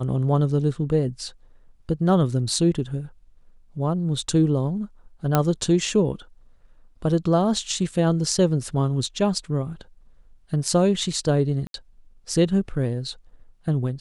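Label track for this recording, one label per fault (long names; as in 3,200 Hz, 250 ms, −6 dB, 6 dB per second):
5.350000	5.350000	click −5 dBFS
11.670000	11.740000	drop-out 72 ms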